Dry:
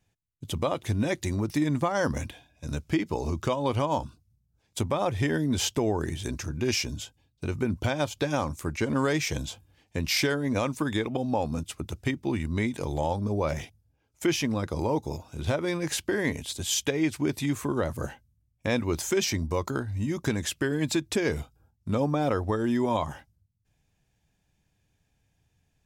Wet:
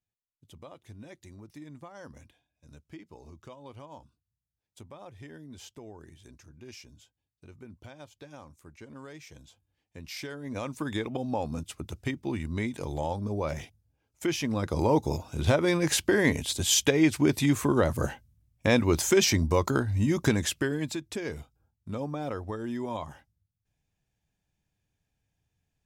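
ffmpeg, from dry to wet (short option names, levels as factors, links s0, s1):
-af "volume=1.58,afade=t=in:st=9.42:d=0.91:silence=0.446684,afade=t=in:st=10.33:d=0.64:silence=0.334965,afade=t=in:st=14.4:d=0.57:silence=0.421697,afade=t=out:st=20.23:d=0.73:silence=0.251189"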